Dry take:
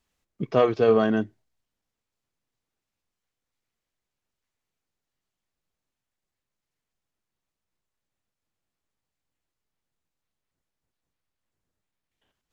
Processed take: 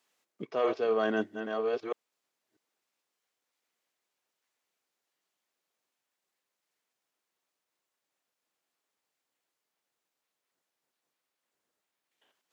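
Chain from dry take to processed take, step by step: chunks repeated in reverse 642 ms, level -11.5 dB; high-pass 380 Hz 12 dB/octave; reverse; compression 6:1, threshold -29 dBFS, peak gain reduction 13 dB; reverse; trim +3.5 dB

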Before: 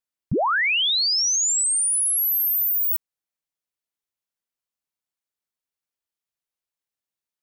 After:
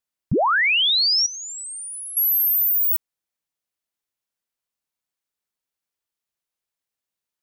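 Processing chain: 1.26–2.17 s: amplifier tone stack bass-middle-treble 6-0-2; trim +2.5 dB

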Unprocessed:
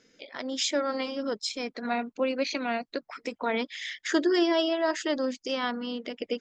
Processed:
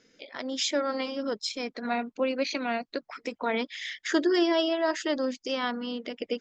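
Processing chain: low-pass 7.6 kHz 24 dB/octave

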